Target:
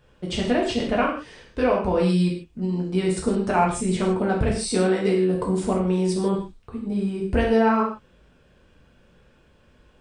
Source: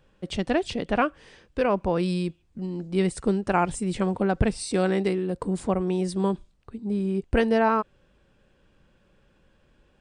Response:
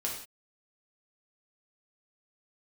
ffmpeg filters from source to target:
-filter_complex "[0:a]acompressor=threshold=-25dB:ratio=2[a];[1:a]atrim=start_sample=2205,afade=t=out:st=0.22:d=0.01,atrim=end_sample=10143[b];[a][b]afir=irnorm=-1:irlink=0,volume=2.5dB"

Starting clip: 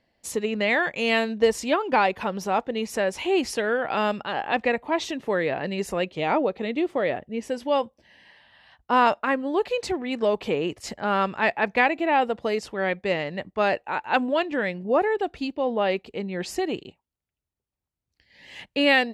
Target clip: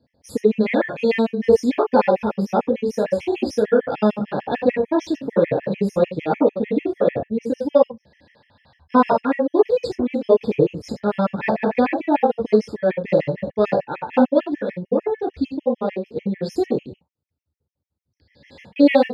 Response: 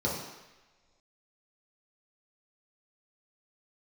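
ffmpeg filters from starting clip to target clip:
-filter_complex "[0:a]lowshelf=f=410:g=6,asplit=3[a][b][c];[a]afade=t=out:st=14.38:d=0.02[d];[b]acompressor=threshold=-23dB:ratio=4,afade=t=in:st=14.38:d=0.02,afade=t=out:st=16.54:d=0.02[e];[c]afade=t=in:st=16.54:d=0.02[f];[d][e][f]amix=inputs=3:normalize=0[g];[1:a]atrim=start_sample=2205,atrim=end_sample=4410[h];[g][h]afir=irnorm=-1:irlink=0,afftfilt=real='re*gt(sin(2*PI*6.7*pts/sr)*(1-2*mod(floor(b*sr/1024/1700),2)),0)':imag='im*gt(sin(2*PI*6.7*pts/sr)*(1-2*mod(floor(b*sr/1024/1700),2)),0)':win_size=1024:overlap=0.75,volume=-6.5dB"

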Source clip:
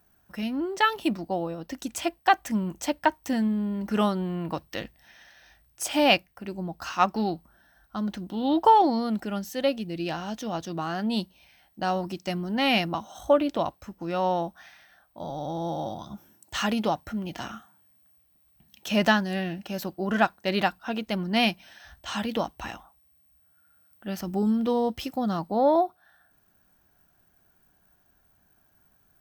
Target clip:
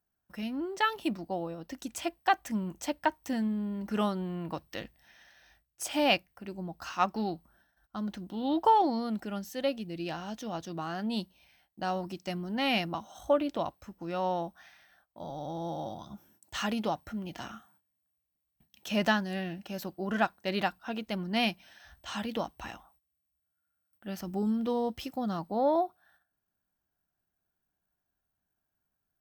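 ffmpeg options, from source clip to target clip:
-af "agate=range=-14dB:threshold=-59dB:ratio=16:detection=peak,volume=-5.5dB"

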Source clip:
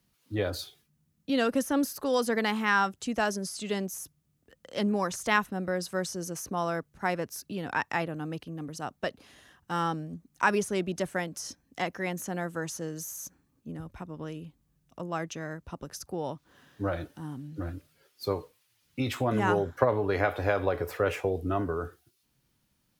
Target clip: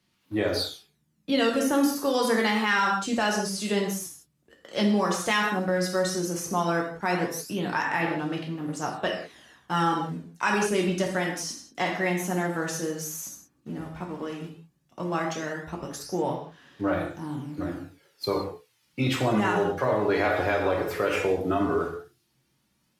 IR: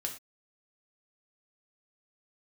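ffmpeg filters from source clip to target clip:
-filter_complex "[0:a]asplit=2[a][b];[b]aeval=exprs='val(0)*gte(abs(val(0)),0.00841)':c=same,volume=-8dB[c];[a][c]amix=inputs=2:normalize=0,highpass=f=140:p=1[d];[1:a]atrim=start_sample=2205,asetrate=27783,aresample=44100[e];[d][e]afir=irnorm=-1:irlink=0,acrossover=split=2600[f][g];[f]alimiter=limit=-15dB:level=0:latency=1:release=87[h];[g]aphaser=in_gain=1:out_gain=1:delay=3.8:decay=0.63:speed=0.12:type=sinusoidal[i];[h][i]amix=inputs=2:normalize=0,highshelf=f=5.8k:g=-7"

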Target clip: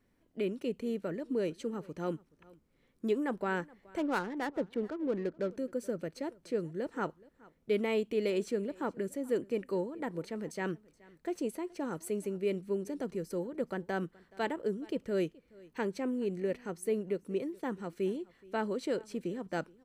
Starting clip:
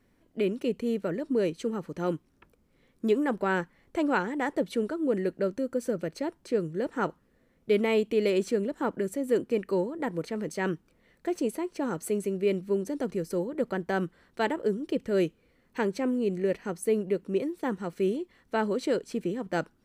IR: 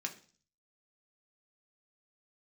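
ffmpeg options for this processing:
-filter_complex "[0:a]asettb=1/sr,asplit=3[a][b][c];[a]atrim=end=3.984[d];[b]atrim=start=3.98:end=5.51,asetpts=PTS-STARTPTS,afade=t=in:d=0.004:c=qsin,afade=t=out:st=1.526:d=0.004:c=qsin,adynamicsmooth=sensitivity=7.5:basefreq=720[e];[c]atrim=start=5.506[f];[d][e]acrossfade=d=0.004:c1=hsin:c2=qsin[g];[g][f]acrossfade=d=0.004:c1=qsin:c2=hsin,aecho=1:1:424:0.0668,volume=-6dB"

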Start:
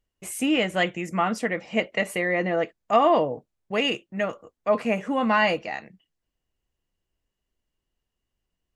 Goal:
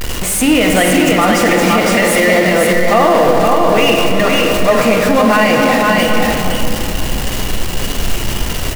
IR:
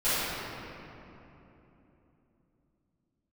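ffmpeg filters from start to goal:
-filter_complex "[0:a]aeval=exprs='val(0)+0.5*0.0668*sgn(val(0))':c=same,aecho=1:1:514:0.668,asplit=2[a][b];[1:a]atrim=start_sample=2205[c];[b][c]afir=irnorm=-1:irlink=0,volume=-15.5dB[d];[a][d]amix=inputs=2:normalize=0,alimiter=level_in=9dB:limit=-1dB:release=50:level=0:latency=1,volume=-1dB"

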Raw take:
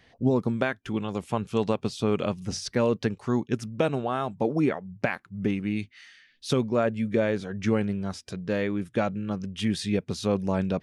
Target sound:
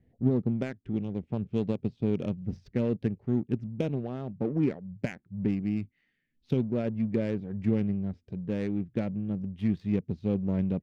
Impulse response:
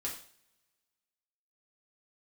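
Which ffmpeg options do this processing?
-af "firequalizer=gain_entry='entry(190,0);entry(1100,-21);entry(2000,-6)':delay=0.05:min_phase=1,adynamicsmooth=sensitivity=3.5:basefreq=860"

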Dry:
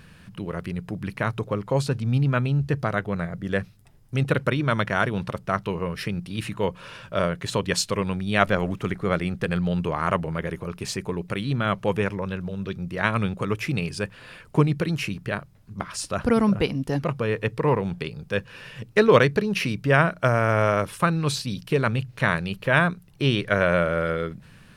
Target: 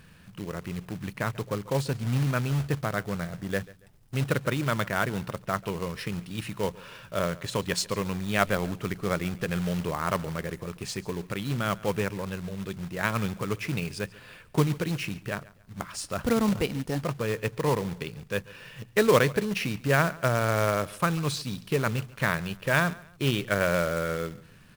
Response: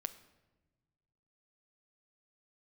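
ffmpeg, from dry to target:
-af "acrusher=bits=3:mode=log:mix=0:aa=0.000001,aecho=1:1:140|280:0.0891|0.0276,volume=-4.5dB"

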